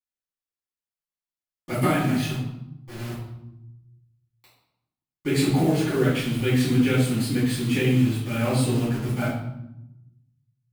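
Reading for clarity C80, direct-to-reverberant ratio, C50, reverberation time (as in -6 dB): 5.0 dB, -13.5 dB, 2.0 dB, 0.85 s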